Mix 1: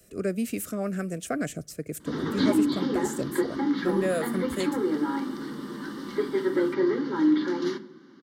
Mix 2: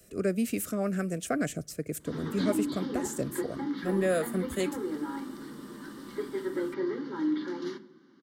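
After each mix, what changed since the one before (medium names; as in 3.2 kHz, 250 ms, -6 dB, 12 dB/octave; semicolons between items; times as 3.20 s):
background -7.5 dB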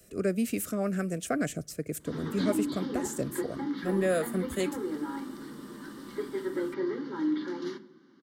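no change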